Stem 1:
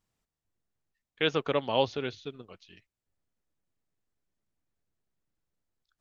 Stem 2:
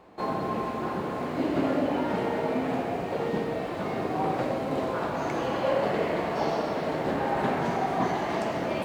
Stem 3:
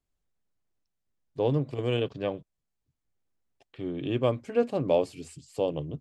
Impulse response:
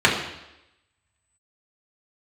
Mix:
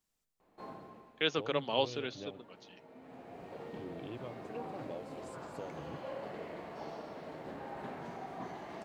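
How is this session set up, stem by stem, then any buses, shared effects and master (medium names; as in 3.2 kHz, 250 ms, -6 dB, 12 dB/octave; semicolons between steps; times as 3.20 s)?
-5.5 dB, 0.00 s, no send, high-pass 150 Hz 24 dB/octave; treble shelf 4.1 kHz +9 dB
-17.0 dB, 0.40 s, no send, auto duck -14 dB, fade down 0.50 s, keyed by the first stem
-10.0 dB, 0.00 s, no send, compression, threshold -32 dBFS, peak gain reduction 13 dB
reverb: none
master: none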